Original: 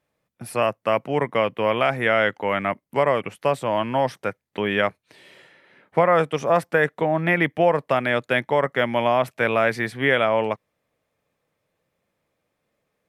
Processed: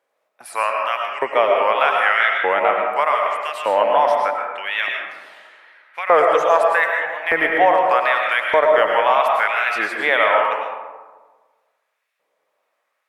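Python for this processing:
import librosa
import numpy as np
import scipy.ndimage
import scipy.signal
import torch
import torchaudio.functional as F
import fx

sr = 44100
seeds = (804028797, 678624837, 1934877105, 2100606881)

y = fx.wow_flutter(x, sr, seeds[0], rate_hz=2.1, depth_cents=120.0)
y = fx.filter_lfo_highpass(y, sr, shape='saw_up', hz=0.82, low_hz=430.0, high_hz=2400.0, q=1.2)
y = fx.peak_eq(y, sr, hz=1000.0, db=4.5, octaves=1.8)
y = fx.rev_freeverb(y, sr, rt60_s=1.4, hf_ratio=0.4, predelay_ms=70, drr_db=0.5)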